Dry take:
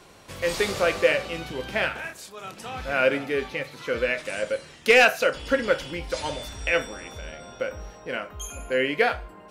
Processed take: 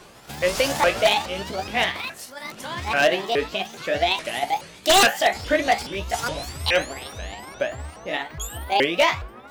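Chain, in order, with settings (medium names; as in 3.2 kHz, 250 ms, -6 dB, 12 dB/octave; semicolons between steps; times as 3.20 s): sawtooth pitch modulation +8.5 st, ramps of 419 ms; wavefolder -13.5 dBFS; trim +4.5 dB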